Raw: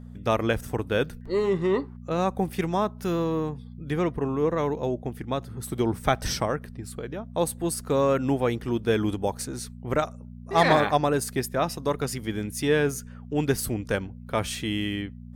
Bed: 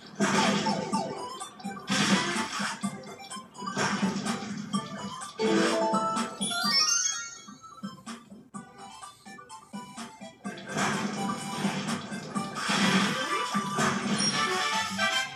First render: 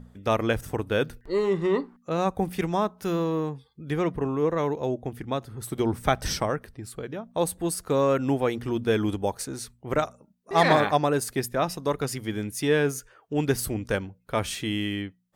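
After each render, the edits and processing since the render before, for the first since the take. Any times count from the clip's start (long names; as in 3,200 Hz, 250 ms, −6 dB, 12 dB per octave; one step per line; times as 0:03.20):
hum removal 60 Hz, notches 4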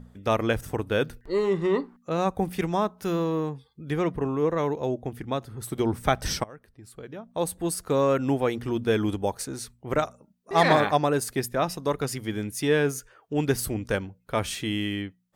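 0:06.44–0:07.71: fade in, from −22.5 dB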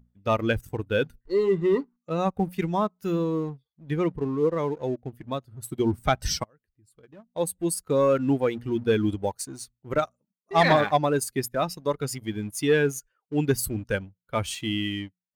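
spectral dynamics exaggerated over time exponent 1.5
leveller curve on the samples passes 1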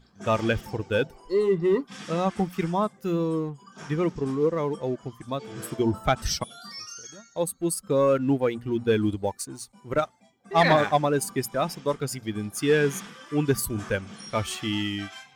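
mix in bed −15.5 dB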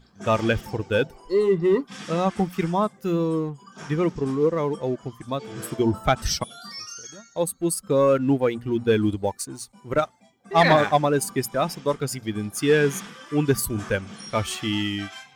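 level +2.5 dB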